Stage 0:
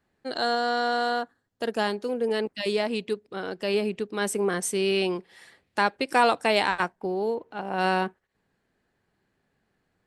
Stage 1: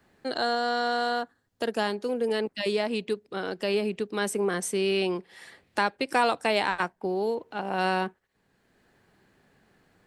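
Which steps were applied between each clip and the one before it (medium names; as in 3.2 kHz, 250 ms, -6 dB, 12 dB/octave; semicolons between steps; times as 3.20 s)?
three bands compressed up and down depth 40%; trim -1.5 dB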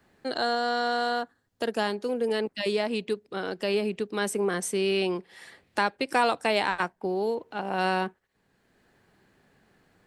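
no audible change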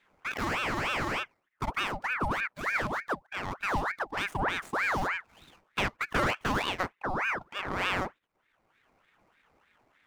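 median filter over 15 samples; ring modulator with a swept carrier 1.2 kHz, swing 70%, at 3.3 Hz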